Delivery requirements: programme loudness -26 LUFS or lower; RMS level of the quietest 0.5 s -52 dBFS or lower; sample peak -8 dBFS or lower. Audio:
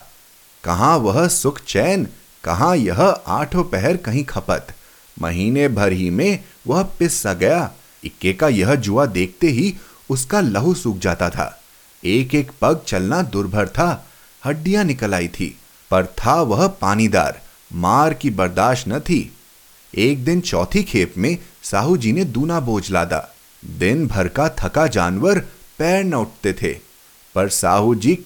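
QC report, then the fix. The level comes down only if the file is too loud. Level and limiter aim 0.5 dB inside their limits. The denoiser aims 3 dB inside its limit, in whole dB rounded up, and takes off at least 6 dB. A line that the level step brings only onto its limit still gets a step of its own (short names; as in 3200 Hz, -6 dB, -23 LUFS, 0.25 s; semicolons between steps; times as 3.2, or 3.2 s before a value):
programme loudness -18.5 LUFS: fail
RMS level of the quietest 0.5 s -48 dBFS: fail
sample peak -2.5 dBFS: fail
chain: gain -8 dB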